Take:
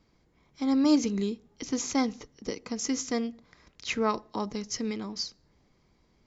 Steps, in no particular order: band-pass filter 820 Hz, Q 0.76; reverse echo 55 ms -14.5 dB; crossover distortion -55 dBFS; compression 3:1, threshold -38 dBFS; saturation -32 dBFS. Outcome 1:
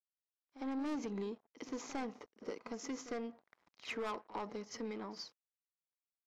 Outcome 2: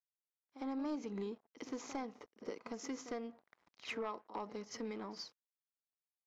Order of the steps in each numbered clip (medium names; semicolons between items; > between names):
crossover distortion > band-pass filter > saturation > compression > reverse echo; crossover distortion > band-pass filter > compression > reverse echo > saturation